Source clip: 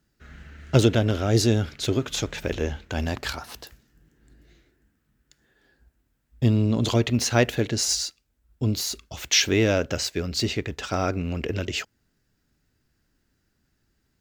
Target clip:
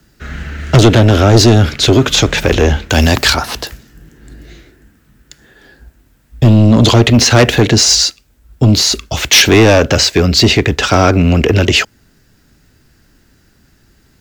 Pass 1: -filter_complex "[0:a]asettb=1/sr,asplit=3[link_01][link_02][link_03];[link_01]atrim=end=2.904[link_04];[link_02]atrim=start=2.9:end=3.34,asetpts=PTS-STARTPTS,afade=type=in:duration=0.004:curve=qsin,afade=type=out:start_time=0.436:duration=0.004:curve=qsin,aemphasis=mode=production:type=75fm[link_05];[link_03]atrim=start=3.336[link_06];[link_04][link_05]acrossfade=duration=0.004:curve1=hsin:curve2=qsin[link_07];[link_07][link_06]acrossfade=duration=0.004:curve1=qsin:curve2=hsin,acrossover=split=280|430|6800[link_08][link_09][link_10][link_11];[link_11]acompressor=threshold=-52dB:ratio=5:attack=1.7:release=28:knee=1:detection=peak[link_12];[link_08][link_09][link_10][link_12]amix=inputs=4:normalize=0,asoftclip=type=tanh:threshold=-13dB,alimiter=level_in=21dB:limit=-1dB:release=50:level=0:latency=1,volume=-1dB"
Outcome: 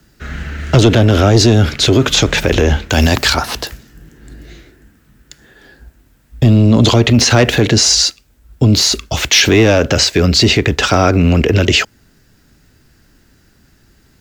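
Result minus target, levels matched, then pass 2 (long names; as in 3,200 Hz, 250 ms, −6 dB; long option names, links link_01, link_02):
soft clipping: distortion −7 dB
-filter_complex "[0:a]asettb=1/sr,asplit=3[link_01][link_02][link_03];[link_01]atrim=end=2.904[link_04];[link_02]atrim=start=2.9:end=3.34,asetpts=PTS-STARTPTS,afade=type=in:duration=0.004:curve=qsin,afade=type=out:start_time=0.436:duration=0.004:curve=qsin,aemphasis=mode=production:type=75fm[link_05];[link_03]atrim=start=3.336[link_06];[link_04][link_05]acrossfade=duration=0.004:curve1=hsin:curve2=qsin[link_07];[link_07][link_06]acrossfade=duration=0.004:curve1=qsin:curve2=hsin,acrossover=split=280|430|6800[link_08][link_09][link_10][link_11];[link_11]acompressor=threshold=-52dB:ratio=5:attack=1.7:release=28:knee=1:detection=peak[link_12];[link_08][link_09][link_10][link_12]amix=inputs=4:normalize=0,asoftclip=type=tanh:threshold=-20dB,alimiter=level_in=21dB:limit=-1dB:release=50:level=0:latency=1,volume=-1dB"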